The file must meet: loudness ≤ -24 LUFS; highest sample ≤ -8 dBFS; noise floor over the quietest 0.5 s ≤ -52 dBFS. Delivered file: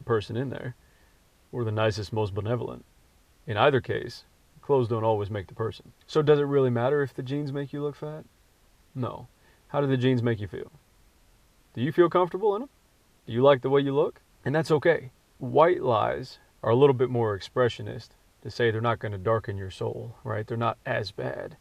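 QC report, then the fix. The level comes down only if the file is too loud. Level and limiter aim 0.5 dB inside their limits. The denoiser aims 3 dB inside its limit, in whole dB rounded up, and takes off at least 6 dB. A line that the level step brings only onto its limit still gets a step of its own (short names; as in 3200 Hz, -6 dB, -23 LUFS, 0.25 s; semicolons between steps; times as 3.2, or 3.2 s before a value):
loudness -26.5 LUFS: OK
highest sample -6.0 dBFS: fail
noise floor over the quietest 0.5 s -62 dBFS: OK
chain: limiter -8.5 dBFS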